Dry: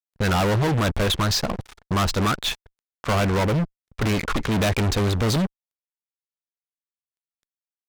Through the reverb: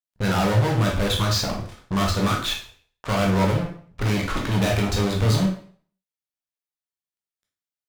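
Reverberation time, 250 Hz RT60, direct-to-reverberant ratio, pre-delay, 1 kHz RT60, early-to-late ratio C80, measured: 0.50 s, 0.50 s, -1.0 dB, 6 ms, 0.50 s, 11.0 dB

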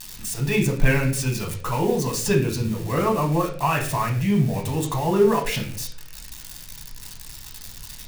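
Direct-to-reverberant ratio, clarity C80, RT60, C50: 0.0 dB, 12.0 dB, 0.50 s, 9.0 dB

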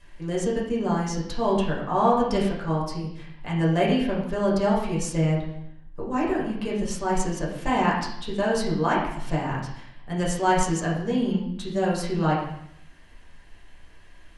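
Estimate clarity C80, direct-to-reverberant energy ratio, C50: 6.5 dB, -6.0 dB, 3.5 dB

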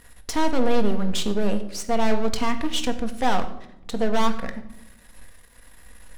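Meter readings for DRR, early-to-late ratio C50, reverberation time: 5.5 dB, 12.0 dB, 0.80 s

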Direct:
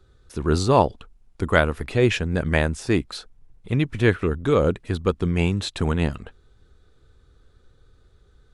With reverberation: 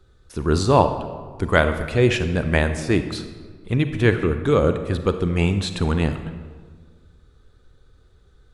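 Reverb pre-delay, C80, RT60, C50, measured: 34 ms, 11.0 dB, 1.6 s, 9.0 dB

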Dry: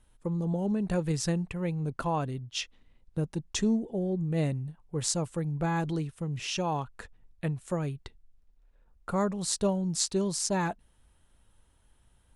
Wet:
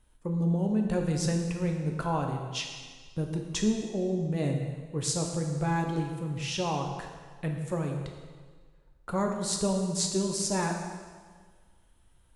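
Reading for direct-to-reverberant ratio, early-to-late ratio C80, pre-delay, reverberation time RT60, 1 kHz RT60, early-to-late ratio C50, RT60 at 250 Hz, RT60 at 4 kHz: 2.0 dB, 5.5 dB, 6 ms, 1.6 s, 1.6 s, 4.5 dB, 1.6 s, 1.5 s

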